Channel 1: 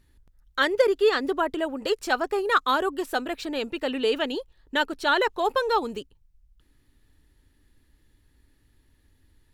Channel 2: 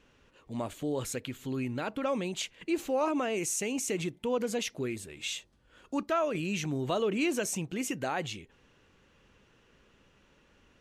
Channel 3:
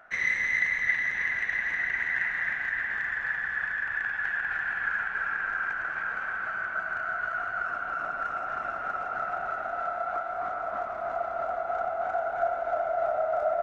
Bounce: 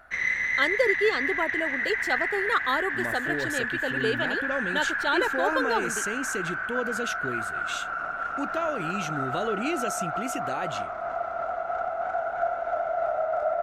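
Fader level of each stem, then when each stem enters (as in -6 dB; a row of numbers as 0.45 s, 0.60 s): -4.0 dB, -0.5 dB, +0.5 dB; 0.00 s, 2.45 s, 0.00 s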